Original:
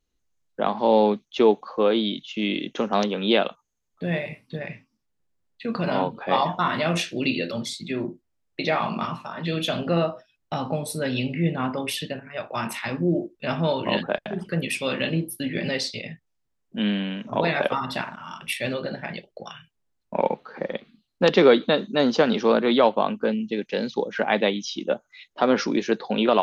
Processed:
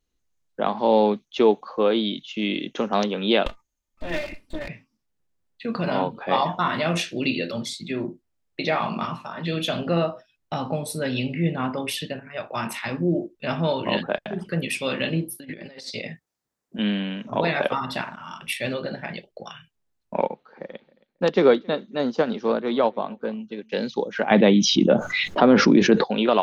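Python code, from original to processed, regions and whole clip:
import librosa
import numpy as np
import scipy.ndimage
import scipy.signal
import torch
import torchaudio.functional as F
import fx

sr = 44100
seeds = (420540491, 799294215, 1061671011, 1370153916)

y = fx.chain(x, sr, fx.lower_of_two(delay_ms=3.3),
    fx.low_shelf(hz=72.0, db=11.0), at=(3.46, 4.68))
y = fx.chain(y, sr, fx.highpass(hz=230.0, slope=6),
    fx.peak_eq(hz=2900.0, db=-5.5, octaves=0.81),
    fx.over_compress(threshold_db=-35.0, ratio=-0.5), at=(15.35, 16.79))
y = fx.chain(y, sr, fx.dynamic_eq(hz=3000.0, q=0.78, threshold_db=-36.0, ratio=4.0, max_db=-5),
    fx.echo_feedback(ms=271, feedback_pct=20, wet_db=-21.0),
    fx.upward_expand(threshold_db=-32.0, expansion=1.5), at=(20.25, 23.72))
y = fx.chain(y, sr, fx.lowpass(hz=2400.0, slope=6),
    fx.peak_eq(hz=150.0, db=8.5, octaves=2.1),
    fx.env_flatten(amount_pct=70), at=(24.31, 26.04))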